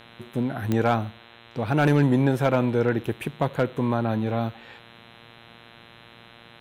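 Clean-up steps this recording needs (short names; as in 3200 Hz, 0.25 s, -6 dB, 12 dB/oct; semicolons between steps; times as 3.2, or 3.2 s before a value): clip repair -10.5 dBFS; de-click; de-hum 116.5 Hz, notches 35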